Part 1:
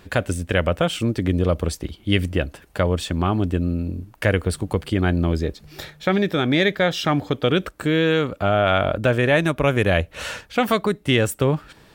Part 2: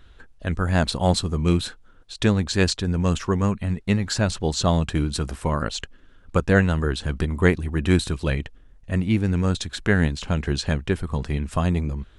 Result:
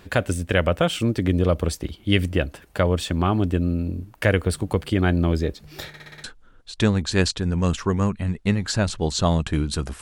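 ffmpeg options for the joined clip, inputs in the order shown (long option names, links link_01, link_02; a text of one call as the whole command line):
ffmpeg -i cue0.wav -i cue1.wav -filter_complex "[0:a]apad=whole_dur=10.01,atrim=end=10.01,asplit=6[link_01][link_02][link_03][link_04][link_05][link_06];[link_01]atrim=end=5.942[link_07];[link_02]atrim=start=5.878:end=5.942[link_08];[link_03]atrim=start=5.878:end=5.942[link_09];[link_04]atrim=start=5.878:end=5.942[link_10];[link_05]atrim=start=5.878:end=5.942[link_11];[link_06]atrim=start=5.878:end=5.942[link_12];[1:a]atrim=start=1.658:end=5.43[link_13];[link_07][link_08]acrossfade=duration=0.004:curve1=hsin:curve2=hsin[link_14];[link_14][link_09]acrossfade=duration=0.004:curve1=hsin:curve2=hsin[link_15];[link_15][link_10]acrossfade=duration=0.004:curve1=hsin:curve2=hsin[link_16];[link_16][link_11]acrossfade=duration=0.004:curve1=hsin:curve2=hsin[link_17];[link_17][link_12]acrossfade=duration=0.004:curve1=hsin:curve2=hsin[link_18];[link_18][link_13]acrossfade=duration=0.004:curve1=hsin:curve2=hsin" out.wav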